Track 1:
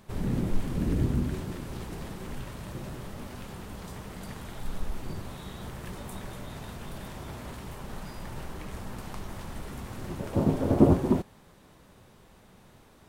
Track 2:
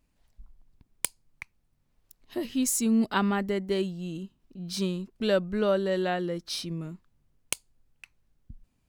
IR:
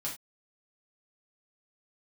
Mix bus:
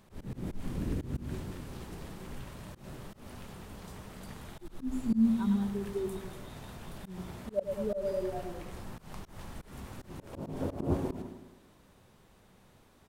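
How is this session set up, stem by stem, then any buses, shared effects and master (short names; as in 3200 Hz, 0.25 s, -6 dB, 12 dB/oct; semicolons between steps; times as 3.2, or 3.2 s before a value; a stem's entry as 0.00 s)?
-5.0 dB, 0.00 s, no send, echo send -14.5 dB, de-hum 57.12 Hz, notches 40
-5.5 dB, 2.25 s, no send, echo send -8 dB, spectral expander 2.5:1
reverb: off
echo: feedback echo 0.105 s, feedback 50%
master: auto swell 0.147 s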